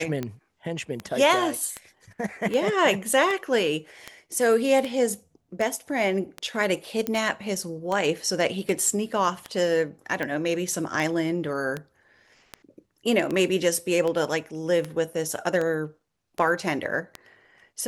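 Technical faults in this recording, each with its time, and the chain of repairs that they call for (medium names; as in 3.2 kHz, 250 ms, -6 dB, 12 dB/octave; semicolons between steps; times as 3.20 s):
tick 78 rpm -16 dBFS
7.07 s: pop -12 dBFS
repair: de-click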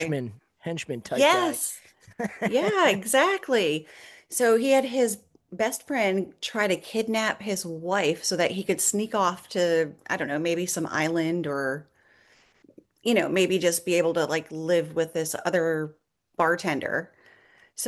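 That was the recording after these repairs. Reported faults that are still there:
nothing left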